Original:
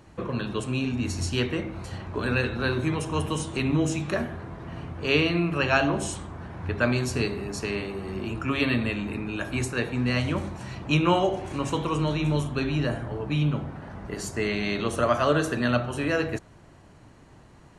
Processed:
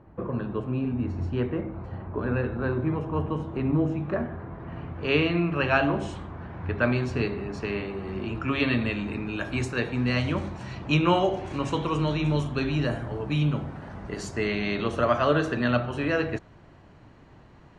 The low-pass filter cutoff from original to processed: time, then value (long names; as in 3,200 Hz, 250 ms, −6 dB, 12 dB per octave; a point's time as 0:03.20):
0:04.00 1,200 Hz
0:05.07 2,900 Hz
0:07.73 2,900 Hz
0:09.05 5,600 Hz
0:12.37 5,600 Hz
0:13.18 9,300 Hz
0:13.88 9,300 Hz
0:14.60 4,000 Hz